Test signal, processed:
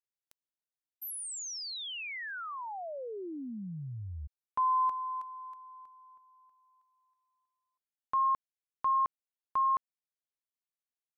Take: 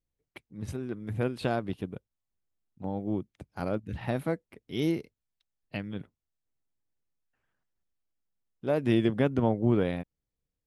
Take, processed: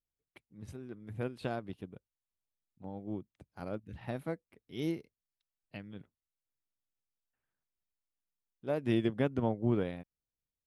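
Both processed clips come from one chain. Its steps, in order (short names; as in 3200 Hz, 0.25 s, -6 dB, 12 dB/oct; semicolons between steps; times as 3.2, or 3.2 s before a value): upward expander 1.5:1, over -33 dBFS; gain -4.5 dB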